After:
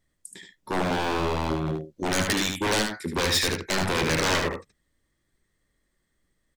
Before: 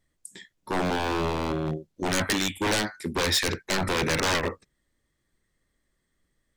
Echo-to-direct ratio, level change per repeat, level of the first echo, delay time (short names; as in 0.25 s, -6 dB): -5.5 dB, no steady repeat, -5.5 dB, 75 ms